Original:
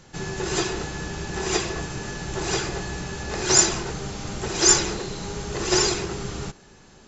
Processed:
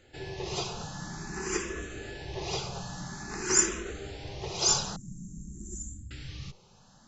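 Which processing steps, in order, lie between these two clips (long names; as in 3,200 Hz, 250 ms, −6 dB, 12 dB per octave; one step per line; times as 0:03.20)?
0:05.76–0:06.68: healed spectral selection 320–1,100 Hz after
0:04.96–0:06.11: inverse Chebyshev band-stop filter 460–4,500 Hz, stop band 40 dB
frequency shifter mixed with the dry sound +0.5 Hz
level −5 dB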